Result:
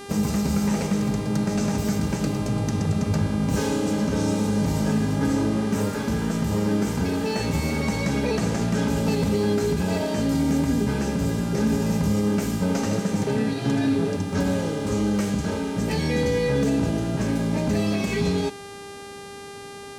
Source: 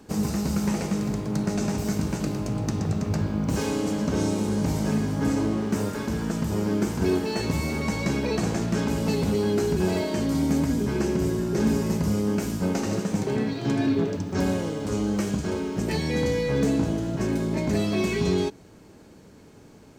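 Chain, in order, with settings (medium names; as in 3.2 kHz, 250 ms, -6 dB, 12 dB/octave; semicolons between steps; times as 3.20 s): peak limiter -17 dBFS, peak gain reduction 5 dB; comb of notches 360 Hz; mains buzz 400 Hz, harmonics 29, -43 dBFS -5 dB/octave; trim +3.5 dB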